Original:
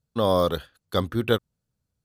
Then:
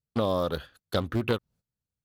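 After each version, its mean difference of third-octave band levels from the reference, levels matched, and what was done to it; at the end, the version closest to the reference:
3.5 dB: noise gate −52 dBFS, range −15 dB
dynamic equaliser 8,600 Hz, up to −7 dB, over −53 dBFS, Q 1.1
downward compressor 4 to 1, threshold −27 dBFS, peak gain reduction 10 dB
highs frequency-modulated by the lows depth 0.38 ms
level +3 dB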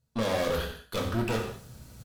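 9.0 dB: reversed playback
upward compression, threshold −29 dBFS
reversed playback
tube saturation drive 32 dB, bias 0.5
slap from a distant wall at 16 metres, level −13 dB
reverb whose tail is shaped and stops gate 230 ms falling, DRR 0 dB
level +3.5 dB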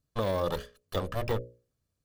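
6.0 dB: lower of the sound and its delayed copy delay 1.7 ms
mains-hum notches 60/120/180/240/300/360/420/480/540/600 Hz
de-essing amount 85%
brickwall limiter −19 dBFS, peak gain reduction 6 dB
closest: first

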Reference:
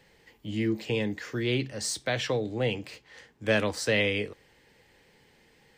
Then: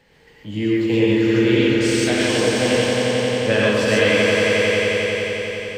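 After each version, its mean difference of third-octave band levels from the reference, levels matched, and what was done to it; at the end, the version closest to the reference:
12.5 dB: high-shelf EQ 4,700 Hz −6 dB
on a send: echo that builds up and dies away 89 ms, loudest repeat 5, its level −6 dB
on the sum: reverb whose tail is shaped and stops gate 160 ms rising, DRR −3.5 dB
level +3 dB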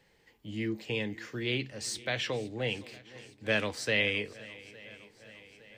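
4.5 dB: dynamic equaliser 2,600 Hz, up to +6 dB, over −41 dBFS, Q 0.88
feedback echo with a long and a short gap by turns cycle 860 ms, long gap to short 1.5 to 1, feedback 53%, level −20 dB
level −6 dB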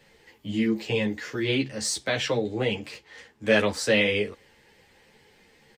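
1.5 dB: downsampling to 32,000 Hz
low-shelf EQ 140 Hz −3 dB
string-ensemble chorus
level +6.5 dB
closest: third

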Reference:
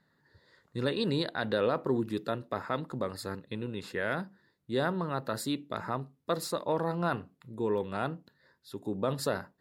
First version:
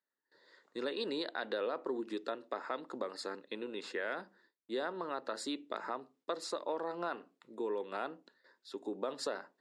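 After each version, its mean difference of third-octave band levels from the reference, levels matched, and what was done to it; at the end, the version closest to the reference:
5.5 dB: low-pass filter 8,000 Hz 24 dB per octave
noise gate with hold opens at −56 dBFS
high-pass filter 290 Hz 24 dB per octave
downward compressor 2.5 to 1, threshold −36 dBFS, peak gain reduction 8.5 dB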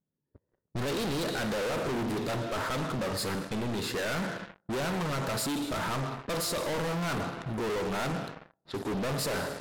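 12.0 dB: four-comb reverb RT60 1.2 s, combs from 26 ms, DRR 12.5 dB
leveller curve on the samples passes 5
gain into a clipping stage and back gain 26.5 dB
low-pass that shuts in the quiet parts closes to 470 Hz, open at −28.5 dBFS
level −3.5 dB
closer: first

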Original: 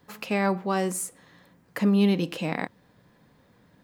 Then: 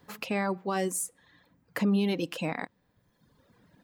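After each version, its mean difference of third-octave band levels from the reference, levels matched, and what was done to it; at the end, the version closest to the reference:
3.0 dB: reverb reduction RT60 1.2 s
brickwall limiter −18.5 dBFS, peak gain reduction 5.5 dB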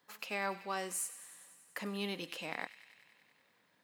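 7.5 dB: high-pass filter 1,100 Hz 6 dB per octave
on a send: delay with a high-pass on its return 96 ms, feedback 76%, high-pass 2,000 Hz, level −14 dB
on the sum: level −6 dB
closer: first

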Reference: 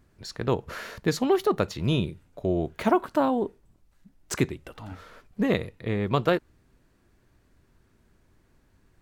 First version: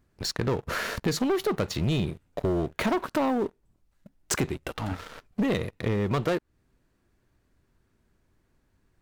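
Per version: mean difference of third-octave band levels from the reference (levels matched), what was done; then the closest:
6.0 dB: leveller curve on the samples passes 3
downward compressor 3 to 1, threshold −27 dBFS, peak gain reduction 11 dB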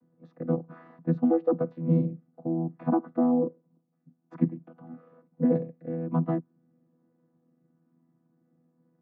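11.5 dB: channel vocoder with a chord as carrier bare fifth, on E3
low-pass filter 1,000 Hz 12 dB per octave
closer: first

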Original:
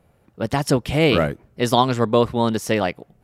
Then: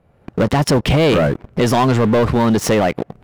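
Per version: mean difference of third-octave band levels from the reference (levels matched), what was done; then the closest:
5.0 dB: camcorder AGC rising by 26 dB per second
low-pass filter 2,300 Hz 6 dB per octave
leveller curve on the samples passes 3
boost into a limiter +15 dB
level −8 dB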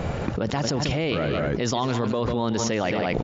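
9.0 dB: brickwall limiter −10 dBFS, peak gain reduction 7 dB
linear-phase brick-wall low-pass 7,300 Hz
multi-tap delay 146/217 ms −13.5/−16 dB
envelope flattener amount 100%
level −9 dB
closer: first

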